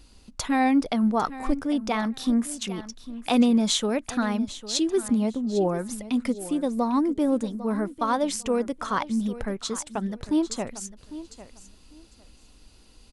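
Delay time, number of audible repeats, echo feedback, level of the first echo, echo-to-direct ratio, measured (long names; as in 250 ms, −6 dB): 801 ms, 2, 19%, −15.0 dB, −15.0 dB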